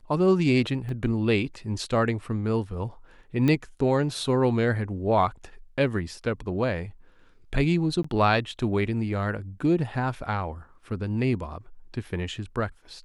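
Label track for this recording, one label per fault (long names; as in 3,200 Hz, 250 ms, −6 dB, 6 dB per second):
0.890000	0.890000	drop-out 2.4 ms
3.480000	3.480000	click −13 dBFS
8.030000	8.040000	drop-out 14 ms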